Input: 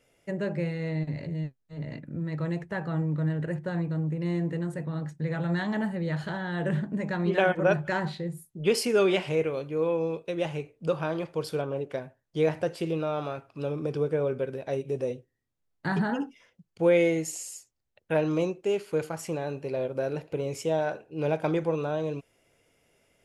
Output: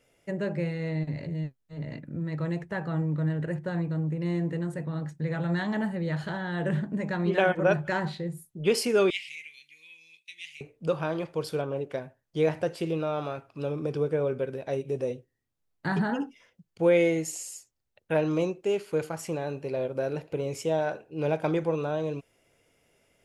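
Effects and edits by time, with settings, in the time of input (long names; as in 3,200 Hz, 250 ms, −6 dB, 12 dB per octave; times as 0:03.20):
0:09.10–0:10.61: elliptic high-pass filter 2,100 Hz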